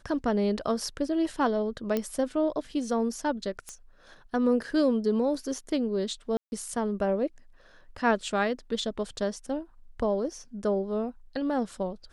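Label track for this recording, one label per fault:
1.970000	1.970000	click −15 dBFS
3.690000	3.690000	click −24 dBFS
6.370000	6.520000	drop-out 151 ms

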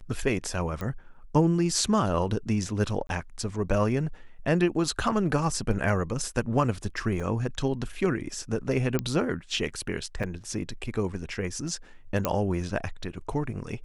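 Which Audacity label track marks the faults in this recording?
0.810000	0.810000	click −20 dBFS
3.070000	3.090000	drop-out 22 ms
7.200000	7.200000	drop-out 3.7 ms
8.990000	8.990000	click −13 dBFS
10.230000	10.240000	drop-out 6 ms
12.250000	12.250000	click −10 dBFS

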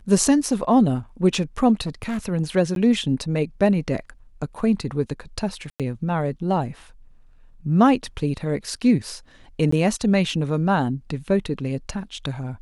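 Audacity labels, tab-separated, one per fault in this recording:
1.860000	2.190000	clipping −22.5 dBFS
2.750000	2.760000	drop-out 12 ms
5.700000	5.800000	drop-out 97 ms
9.710000	9.720000	drop-out 14 ms

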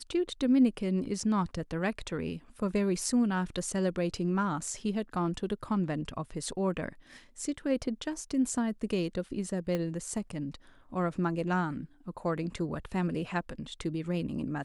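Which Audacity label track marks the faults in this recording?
9.750000	9.750000	click −19 dBFS

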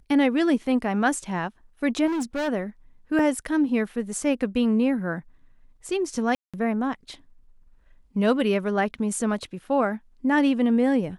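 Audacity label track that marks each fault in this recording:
2.060000	2.490000	clipping −24 dBFS
3.190000	3.190000	drop-out 2.2 ms
6.350000	6.540000	drop-out 186 ms

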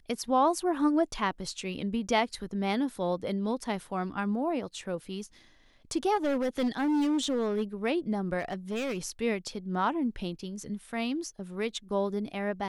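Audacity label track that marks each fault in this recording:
6.150000	7.630000	clipping −24 dBFS
8.390000	8.980000	clipping −28.5 dBFS

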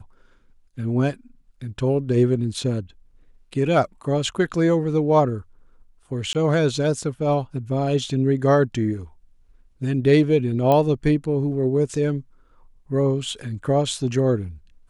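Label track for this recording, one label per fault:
6.330000	6.350000	drop-out 18 ms
10.720000	10.720000	click −9 dBFS

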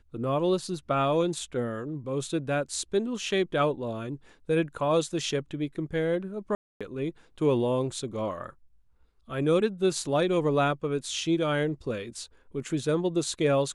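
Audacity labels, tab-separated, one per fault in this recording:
6.550000	6.810000	drop-out 256 ms

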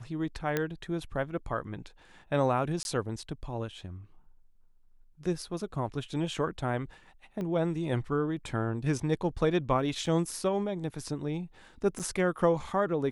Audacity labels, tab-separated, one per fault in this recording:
0.570000	0.570000	click −14 dBFS
2.830000	2.850000	drop-out 21 ms
7.410000	7.410000	click −25 dBFS
10.060000	10.070000	drop-out 5.2 ms
11.990000	12.000000	drop-out 7.2 ms

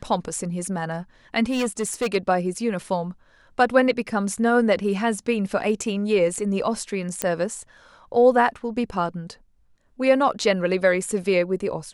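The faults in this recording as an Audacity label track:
1.500000	2.160000	clipping −19 dBFS
7.220000	7.220000	click −7 dBFS

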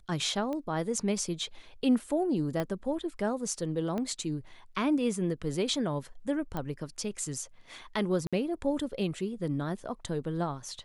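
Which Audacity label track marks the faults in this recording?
0.530000	0.530000	click −24 dBFS
2.600000	2.600000	click −18 dBFS
3.980000	3.980000	click −22 dBFS
6.570000	6.570000	click −21 dBFS
8.270000	8.330000	drop-out 56 ms

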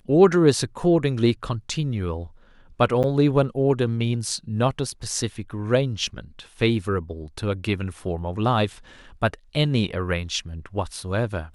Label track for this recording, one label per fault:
3.030000	3.040000	drop-out 8.7 ms

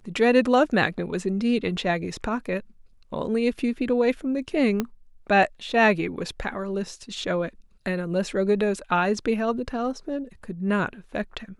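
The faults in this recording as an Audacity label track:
4.800000	4.800000	click −11 dBFS

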